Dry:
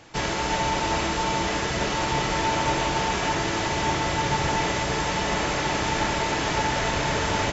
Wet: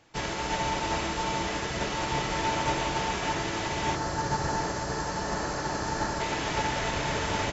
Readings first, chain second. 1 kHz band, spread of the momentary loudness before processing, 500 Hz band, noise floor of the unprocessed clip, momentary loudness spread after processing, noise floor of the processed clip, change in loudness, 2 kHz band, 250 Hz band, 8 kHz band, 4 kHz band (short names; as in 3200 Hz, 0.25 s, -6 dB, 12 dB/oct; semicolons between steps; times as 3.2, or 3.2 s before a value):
-4.5 dB, 1 LU, -5.0 dB, -27 dBFS, 3 LU, -33 dBFS, -5.0 dB, -5.5 dB, -5.0 dB, n/a, -5.5 dB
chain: spectral gain 3.95–6.21, 1900–4000 Hz -9 dB; upward expander 1.5:1, over -38 dBFS; gain -3 dB